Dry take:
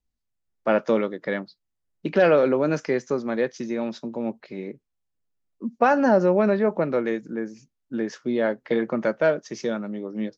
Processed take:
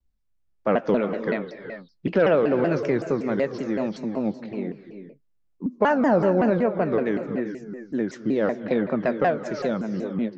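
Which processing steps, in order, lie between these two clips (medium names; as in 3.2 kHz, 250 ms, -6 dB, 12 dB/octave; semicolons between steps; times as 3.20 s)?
bass shelf 120 Hz +8.5 dB; gated-style reverb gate 440 ms rising, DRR 10 dB; in parallel at -1 dB: compression, threshold -22 dBFS, peak gain reduction 9.5 dB; on the sum: treble shelf 4.5 kHz -8.5 dB; vibrato with a chosen wave saw down 5.3 Hz, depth 250 cents; trim -4.5 dB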